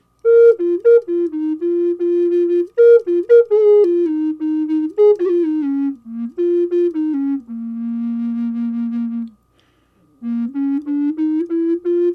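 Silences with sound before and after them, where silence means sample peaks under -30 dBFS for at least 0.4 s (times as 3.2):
9.28–10.23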